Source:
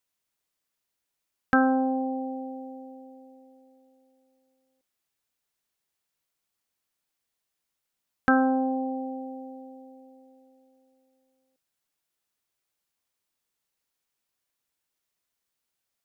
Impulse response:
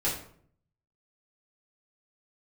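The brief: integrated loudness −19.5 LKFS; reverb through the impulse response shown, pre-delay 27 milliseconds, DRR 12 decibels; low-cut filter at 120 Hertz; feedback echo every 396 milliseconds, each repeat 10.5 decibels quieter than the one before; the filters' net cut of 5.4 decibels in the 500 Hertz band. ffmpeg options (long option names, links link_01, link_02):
-filter_complex "[0:a]highpass=120,equalizer=frequency=500:width_type=o:gain=-5.5,aecho=1:1:396|792|1188:0.299|0.0896|0.0269,asplit=2[link_01][link_02];[1:a]atrim=start_sample=2205,adelay=27[link_03];[link_02][link_03]afir=irnorm=-1:irlink=0,volume=-20dB[link_04];[link_01][link_04]amix=inputs=2:normalize=0,volume=8.5dB"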